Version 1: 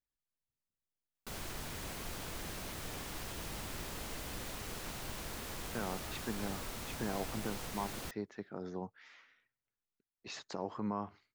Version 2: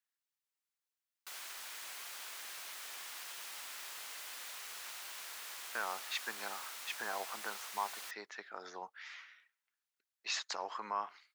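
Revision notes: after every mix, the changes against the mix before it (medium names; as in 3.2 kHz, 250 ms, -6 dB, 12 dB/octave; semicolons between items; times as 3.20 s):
speech +9.5 dB; master: add high-pass 1.2 kHz 12 dB/octave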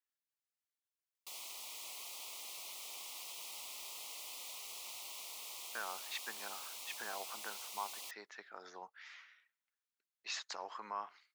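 speech -4.5 dB; background: add Butterworth band-stop 1.6 kHz, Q 1.3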